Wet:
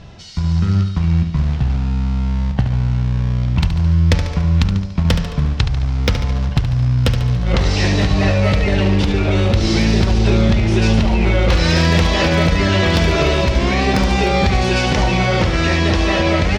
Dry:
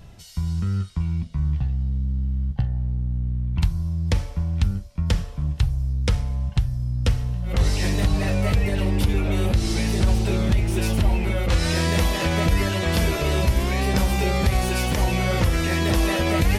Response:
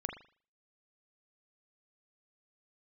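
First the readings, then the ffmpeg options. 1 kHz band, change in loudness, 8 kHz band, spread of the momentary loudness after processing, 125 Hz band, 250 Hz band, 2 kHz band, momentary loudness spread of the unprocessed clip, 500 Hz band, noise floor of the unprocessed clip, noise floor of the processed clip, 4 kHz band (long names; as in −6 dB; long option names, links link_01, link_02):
+8.0 dB, +7.0 dB, +2.0 dB, 4 LU, +7.0 dB, +8.0 dB, +8.0 dB, 5 LU, +8.0 dB, −37 dBFS, −23 dBFS, +8.0 dB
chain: -filter_complex "[0:a]asplit=2[link_01][link_02];[link_02]acrusher=bits=3:mode=log:mix=0:aa=0.000001,volume=-6dB[link_03];[link_01][link_03]amix=inputs=2:normalize=0,lowpass=frequency=5800:width=0.5412,lowpass=frequency=5800:width=1.3066,dynaudnorm=framelen=430:gausssize=7:maxgain=15dB,lowshelf=frequency=94:gain=-6,aeval=exprs='0.596*(abs(mod(val(0)/0.596+3,4)-2)-1)':channel_layout=same,acompressor=threshold=-18dB:ratio=6,asplit=2[link_04][link_05];[link_05]aecho=0:1:72|144|216|288|360|432:0.355|0.195|0.107|0.059|0.0325|0.0179[link_06];[link_04][link_06]amix=inputs=2:normalize=0,volume=5.5dB"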